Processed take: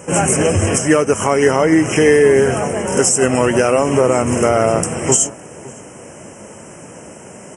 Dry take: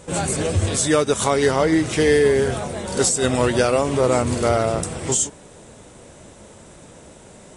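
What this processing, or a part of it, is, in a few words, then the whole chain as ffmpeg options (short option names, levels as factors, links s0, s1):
PA system with an anti-feedback notch: -filter_complex "[0:a]highpass=120,asuperstop=centerf=4000:order=20:qfactor=2.1,alimiter=limit=0.299:level=0:latency=1:release=247,asettb=1/sr,asplit=3[s0][s1][s2];[s0]atrim=end=0.784[s3];[s1]atrim=start=0.78:end=1.96,asetpts=PTS-STARTPTS,afade=t=in:d=0.004:c=qsin,afade=t=out:st=1.176:d=0.004:c=qsin,acrossover=split=4100[s4][s5];[s5]acompressor=threshold=0.0282:ratio=4:attack=1:release=60[s6];[s4][s6]amix=inputs=2:normalize=0[s7];[s2]atrim=start=1.956[s8];[s3][s7]acrossfade=d=0.004:c1=hsin:c2=qsin[s9];[s9][s8]acrossfade=d=0.004:c1=qsin:c2=hsin,asplit=2[s10][s11];[s11]adelay=559.8,volume=0.112,highshelf=f=4000:g=-12.6[s12];[s10][s12]amix=inputs=2:normalize=0,volume=2.66"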